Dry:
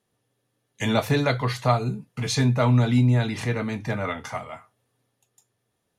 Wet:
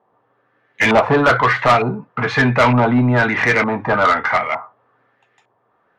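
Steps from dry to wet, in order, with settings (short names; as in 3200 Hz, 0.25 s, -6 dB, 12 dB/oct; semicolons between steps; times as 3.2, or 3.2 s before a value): LFO low-pass saw up 1.1 Hz 890–2300 Hz; overdrive pedal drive 23 dB, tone 4100 Hz, clips at -3 dBFS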